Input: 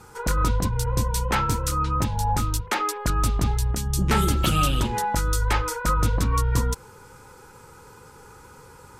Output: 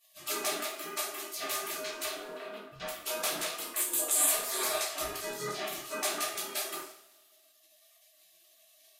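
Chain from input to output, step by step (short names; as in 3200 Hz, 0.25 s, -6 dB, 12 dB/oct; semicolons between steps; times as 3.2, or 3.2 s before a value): notches 60/120/180/240/300 Hz; spectral gate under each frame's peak -30 dB weak; 3.76–4.3 resonant high shelf 6700 Hz +6 dB, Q 3; 5.16–5.99 negative-ratio compressor -46 dBFS, ratio -1; small resonant body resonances 380/640/1200 Hz, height 15 dB, ringing for 55 ms; 2.17–2.8 air absorption 480 m; two-slope reverb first 0.44 s, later 1.5 s, from -19 dB, DRR -4 dB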